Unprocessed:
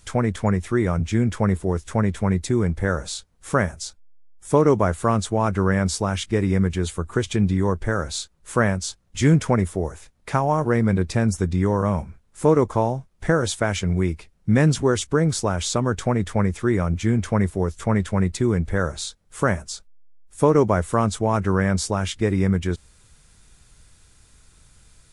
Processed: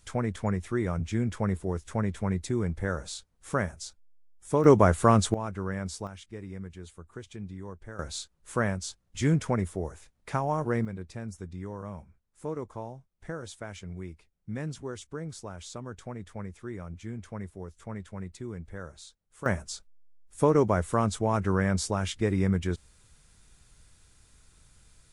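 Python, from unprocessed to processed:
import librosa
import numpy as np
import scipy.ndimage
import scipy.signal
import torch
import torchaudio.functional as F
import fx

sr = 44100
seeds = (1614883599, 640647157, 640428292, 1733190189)

y = fx.gain(x, sr, db=fx.steps((0.0, -8.0), (4.64, 0.0), (5.34, -13.0), (6.07, -20.0), (7.99, -8.0), (10.85, -18.0), (19.46, -5.5)))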